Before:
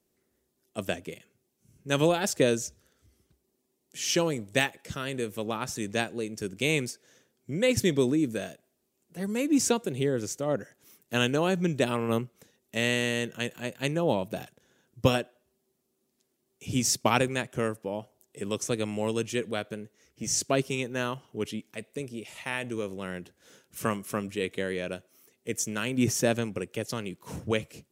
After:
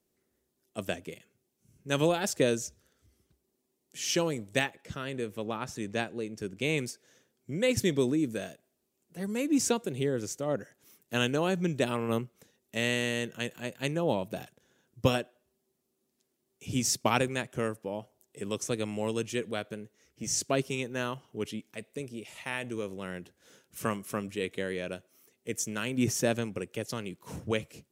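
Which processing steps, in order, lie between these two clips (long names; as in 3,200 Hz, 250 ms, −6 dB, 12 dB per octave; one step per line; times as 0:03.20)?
0:04.59–0:06.78: high-shelf EQ 5,000 Hz −8.5 dB
level −2.5 dB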